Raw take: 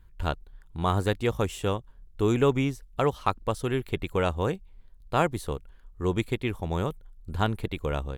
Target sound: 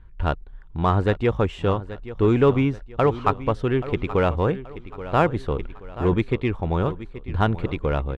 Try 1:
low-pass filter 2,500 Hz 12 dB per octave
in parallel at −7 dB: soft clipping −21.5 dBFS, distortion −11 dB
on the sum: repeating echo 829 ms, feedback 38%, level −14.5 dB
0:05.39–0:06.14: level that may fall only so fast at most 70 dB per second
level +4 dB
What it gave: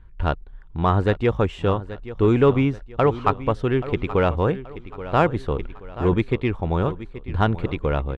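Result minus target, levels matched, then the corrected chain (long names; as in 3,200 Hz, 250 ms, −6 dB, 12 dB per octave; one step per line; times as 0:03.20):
soft clipping: distortion −5 dB
low-pass filter 2,500 Hz 12 dB per octave
in parallel at −7 dB: soft clipping −28.5 dBFS, distortion −6 dB
on the sum: repeating echo 829 ms, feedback 38%, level −14.5 dB
0:05.39–0:06.14: level that may fall only so fast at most 70 dB per second
level +4 dB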